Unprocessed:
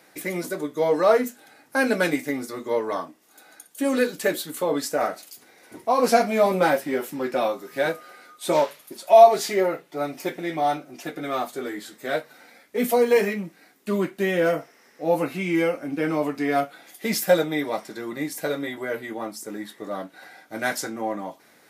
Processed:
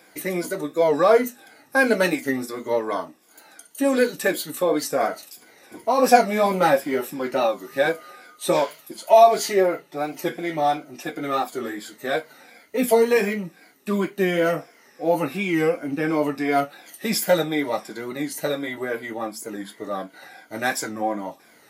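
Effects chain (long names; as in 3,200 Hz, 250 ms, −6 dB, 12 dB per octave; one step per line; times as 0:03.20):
rippled gain that drifts along the octave scale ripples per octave 1.8, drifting −2.8 Hz, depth 9 dB
wow of a warped record 45 rpm, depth 100 cents
level +1 dB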